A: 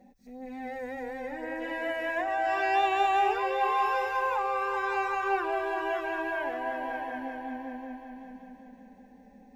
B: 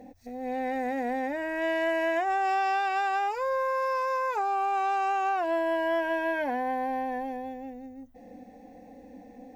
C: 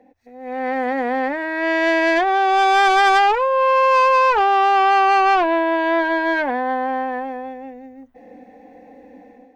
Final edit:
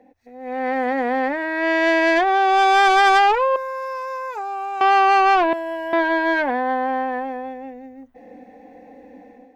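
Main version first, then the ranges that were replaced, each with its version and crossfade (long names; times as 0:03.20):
C
0:03.56–0:04.81: punch in from B
0:05.53–0:05.93: punch in from B
not used: A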